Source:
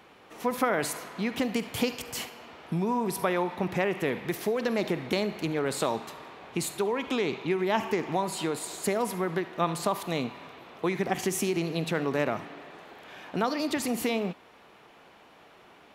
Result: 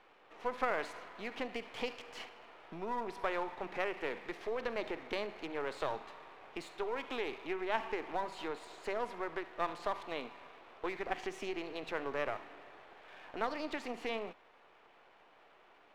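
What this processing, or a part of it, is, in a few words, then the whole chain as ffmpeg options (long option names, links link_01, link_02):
crystal radio: -af "highpass=400,lowpass=3000,aeval=exprs='if(lt(val(0),0),0.447*val(0),val(0))':channel_layout=same,volume=-4.5dB"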